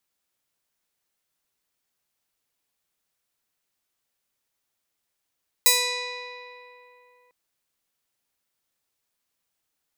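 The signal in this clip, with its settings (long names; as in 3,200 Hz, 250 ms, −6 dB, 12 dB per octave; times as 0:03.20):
Karplus-Strong string B4, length 1.65 s, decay 3.06 s, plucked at 0.33, bright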